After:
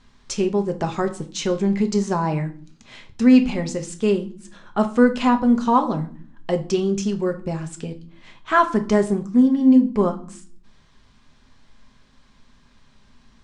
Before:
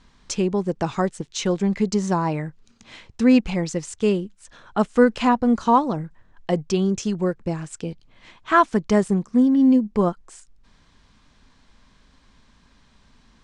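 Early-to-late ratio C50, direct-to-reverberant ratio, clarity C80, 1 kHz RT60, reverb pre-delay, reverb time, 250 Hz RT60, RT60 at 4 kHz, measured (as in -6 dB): 14.5 dB, 5.5 dB, 19.5 dB, 0.45 s, 5 ms, 0.50 s, 0.85 s, 0.40 s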